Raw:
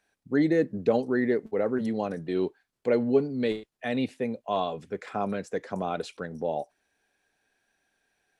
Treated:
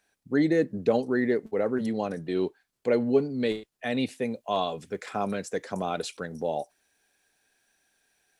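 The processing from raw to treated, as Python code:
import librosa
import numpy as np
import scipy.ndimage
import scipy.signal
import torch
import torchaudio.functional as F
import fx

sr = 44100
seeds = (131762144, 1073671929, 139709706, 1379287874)

y = fx.high_shelf(x, sr, hz=4200.0, db=fx.steps((0.0, 5.5), (3.97, 11.5)))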